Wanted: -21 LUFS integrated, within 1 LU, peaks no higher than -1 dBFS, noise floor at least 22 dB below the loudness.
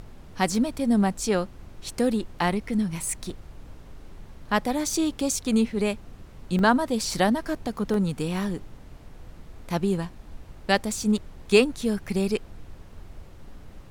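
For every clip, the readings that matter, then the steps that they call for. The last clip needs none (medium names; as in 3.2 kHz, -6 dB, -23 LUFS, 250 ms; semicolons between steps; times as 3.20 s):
dropouts 6; longest dropout 1.8 ms; noise floor -46 dBFS; noise floor target -48 dBFS; loudness -25.5 LUFS; peak level -6.5 dBFS; loudness target -21.0 LUFS
-> interpolate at 0.52/3.30/4.93/6.59/7.14/7.94 s, 1.8 ms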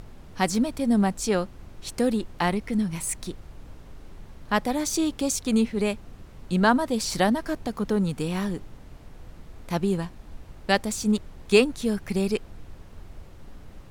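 dropouts 0; noise floor -46 dBFS; noise floor target -48 dBFS
-> noise print and reduce 6 dB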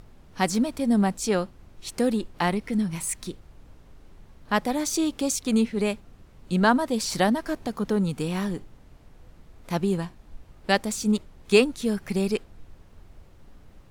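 noise floor -52 dBFS; loudness -25.5 LUFS; peak level -6.0 dBFS; loudness target -21.0 LUFS
-> trim +4.5 dB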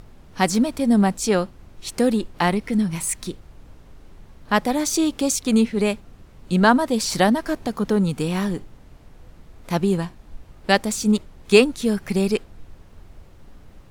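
loudness -21.0 LUFS; peak level -1.5 dBFS; noise floor -47 dBFS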